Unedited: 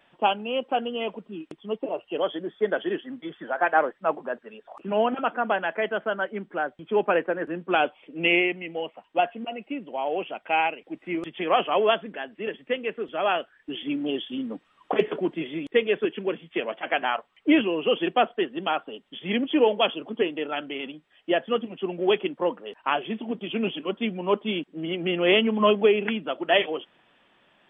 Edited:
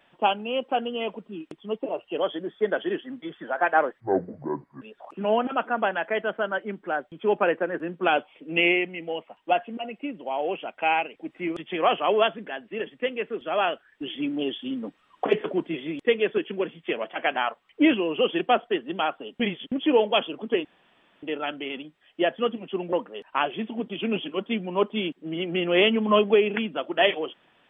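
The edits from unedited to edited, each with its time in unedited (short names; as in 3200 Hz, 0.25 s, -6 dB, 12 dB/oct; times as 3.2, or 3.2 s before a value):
4–4.49 speed 60%
19.07–19.39 reverse
20.32 insert room tone 0.58 s
22.02–22.44 cut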